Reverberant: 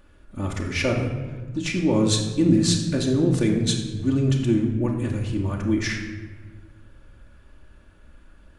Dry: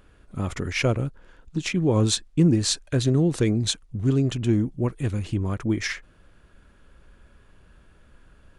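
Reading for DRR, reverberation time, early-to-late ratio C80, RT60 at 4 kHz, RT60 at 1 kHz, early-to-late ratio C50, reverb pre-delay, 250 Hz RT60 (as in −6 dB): 0.0 dB, 1.3 s, 7.5 dB, 0.85 s, 1.2 s, 5.5 dB, 3 ms, 1.9 s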